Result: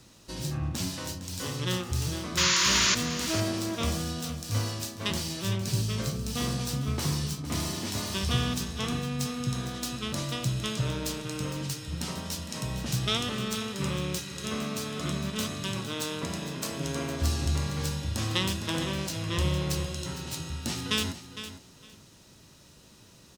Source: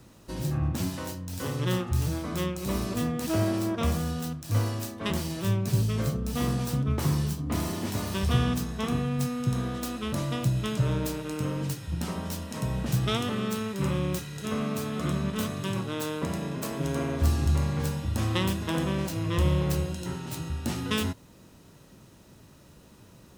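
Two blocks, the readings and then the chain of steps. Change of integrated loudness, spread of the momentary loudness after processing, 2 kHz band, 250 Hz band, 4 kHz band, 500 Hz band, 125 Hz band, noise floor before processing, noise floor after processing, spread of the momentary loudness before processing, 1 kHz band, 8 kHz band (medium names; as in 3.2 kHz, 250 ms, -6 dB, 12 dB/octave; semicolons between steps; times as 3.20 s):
-1.0 dB, 7 LU, +3.5 dB, -3.5 dB, +7.0 dB, -3.5 dB, -3.5 dB, -54 dBFS, -55 dBFS, 7 LU, -1.0 dB, +7.0 dB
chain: peaking EQ 5 kHz +10.5 dB 2.2 oct; painted sound noise, 2.37–2.95 s, 920–7200 Hz -20 dBFS; on a send: feedback delay 458 ms, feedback 19%, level -12 dB; on the sum: trim -4 dB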